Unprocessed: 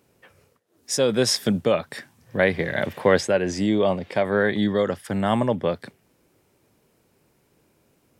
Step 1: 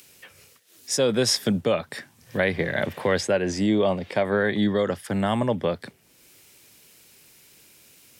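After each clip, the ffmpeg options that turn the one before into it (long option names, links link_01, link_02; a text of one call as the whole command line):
ffmpeg -i in.wav -filter_complex "[0:a]acrossover=split=120|2100[link_01][link_02][link_03];[link_02]alimiter=limit=-12.5dB:level=0:latency=1:release=134[link_04];[link_03]acompressor=mode=upward:threshold=-38dB:ratio=2.5[link_05];[link_01][link_04][link_05]amix=inputs=3:normalize=0" out.wav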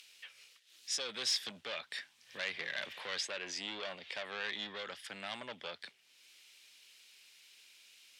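ffmpeg -i in.wav -af "asoftclip=type=tanh:threshold=-22dB,bandpass=frequency=3300:width_type=q:width=1.4:csg=0" out.wav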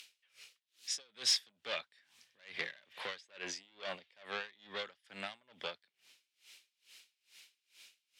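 ffmpeg -i in.wav -af "aeval=exprs='val(0)*pow(10,-30*(0.5-0.5*cos(2*PI*2.3*n/s))/20)':channel_layout=same,volume=4dB" out.wav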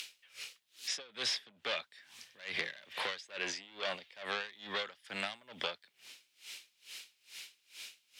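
ffmpeg -i in.wav -filter_complex "[0:a]acrossover=split=580|3600[link_01][link_02][link_03];[link_01]acompressor=threshold=-58dB:ratio=4[link_04];[link_02]acompressor=threshold=-48dB:ratio=4[link_05];[link_03]acompressor=threshold=-55dB:ratio=4[link_06];[link_04][link_05][link_06]amix=inputs=3:normalize=0,volume=11dB" out.wav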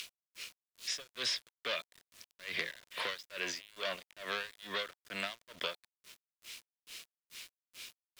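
ffmpeg -i in.wav -af "aeval=exprs='val(0)*gte(abs(val(0)),0.00335)':channel_layout=same,asuperstop=centerf=810:order=4:qfactor=5.4" out.wav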